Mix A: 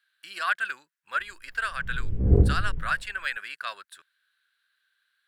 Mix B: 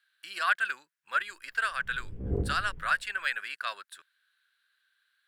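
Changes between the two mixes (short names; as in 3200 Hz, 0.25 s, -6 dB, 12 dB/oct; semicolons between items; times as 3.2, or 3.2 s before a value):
background -6.5 dB; master: add low shelf 180 Hz -8 dB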